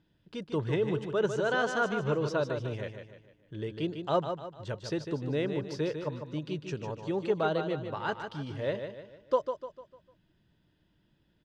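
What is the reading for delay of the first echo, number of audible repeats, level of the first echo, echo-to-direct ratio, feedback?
150 ms, 4, −7.5 dB, −6.5 dB, 42%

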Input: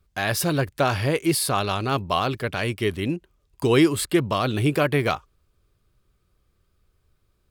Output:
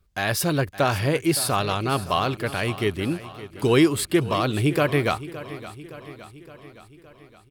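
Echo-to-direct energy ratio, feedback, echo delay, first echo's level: −13.5 dB, 58%, 566 ms, −15.5 dB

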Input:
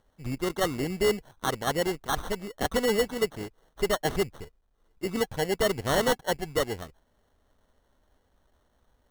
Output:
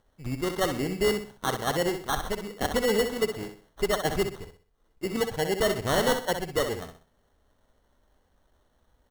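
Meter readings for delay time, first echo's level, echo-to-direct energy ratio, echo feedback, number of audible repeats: 63 ms, −8.0 dB, −7.5 dB, 33%, 3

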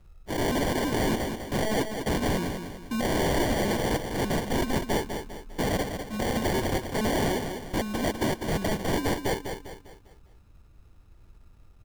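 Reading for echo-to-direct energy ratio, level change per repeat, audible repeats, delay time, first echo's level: −6.0 dB, −7.5 dB, 4, 200 ms, −7.0 dB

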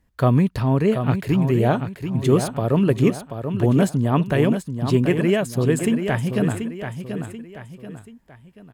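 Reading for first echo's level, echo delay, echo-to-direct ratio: −8.0 dB, 734 ms, −7.5 dB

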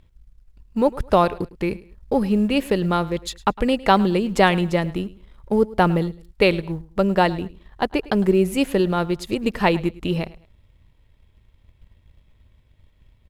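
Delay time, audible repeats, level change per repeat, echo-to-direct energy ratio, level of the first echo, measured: 106 ms, 2, −10.5 dB, −19.5 dB, −20.0 dB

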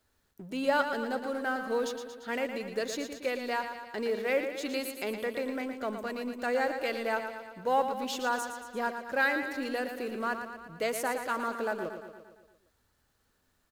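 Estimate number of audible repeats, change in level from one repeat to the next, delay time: 6, −4.5 dB, 115 ms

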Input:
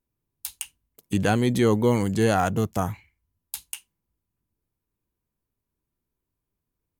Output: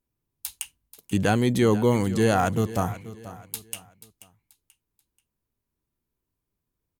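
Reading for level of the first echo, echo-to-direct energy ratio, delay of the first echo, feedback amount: −16.0 dB, −15.5 dB, 484 ms, 35%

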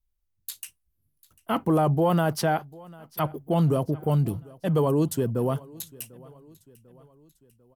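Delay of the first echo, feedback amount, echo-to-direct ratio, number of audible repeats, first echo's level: 746 ms, 51%, −22.0 dB, 3, −23.0 dB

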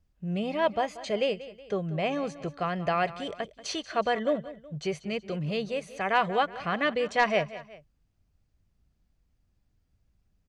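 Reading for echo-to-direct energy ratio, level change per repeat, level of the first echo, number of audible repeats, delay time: −15.0 dB, −6.5 dB, −16.0 dB, 2, 185 ms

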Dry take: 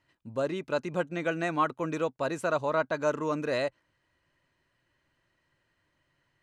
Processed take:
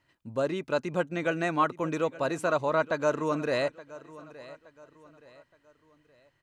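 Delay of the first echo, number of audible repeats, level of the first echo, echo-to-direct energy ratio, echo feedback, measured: 871 ms, 3, −18.5 dB, −18.0 dB, 39%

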